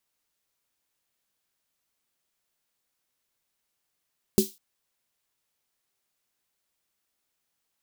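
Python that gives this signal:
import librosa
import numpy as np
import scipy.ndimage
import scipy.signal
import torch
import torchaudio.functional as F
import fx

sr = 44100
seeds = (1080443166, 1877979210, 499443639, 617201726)

y = fx.drum_snare(sr, seeds[0], length_s=0.2, hz=210.0, second_hz=380.0, noise_db=-9.0, noise_from_hz=3500.0, decay_s=0.15, noise_decay_s=0.29)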